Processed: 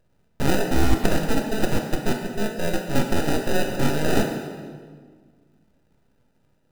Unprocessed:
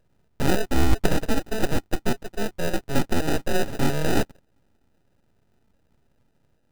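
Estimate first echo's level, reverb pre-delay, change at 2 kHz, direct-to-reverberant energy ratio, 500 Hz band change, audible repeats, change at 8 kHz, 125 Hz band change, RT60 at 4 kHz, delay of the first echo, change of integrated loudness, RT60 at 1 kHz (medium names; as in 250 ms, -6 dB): no echo, 13 ms, +2.0 dB, 2.5 dB, +2.0 dB, no echo, +1.5 dB, +1.0 dB, 1.3 s, no echo, +1.5 dB, 1.6 s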